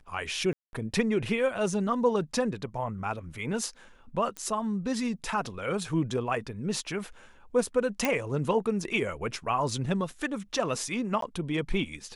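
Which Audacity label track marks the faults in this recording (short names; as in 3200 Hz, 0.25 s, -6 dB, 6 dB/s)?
0.530000	0.730000	gap 0.201 s
4.370000	4.370000	pop -21 dBFS
8.050000	8.050000	pop
11.210000	11.220000	gap 13 ms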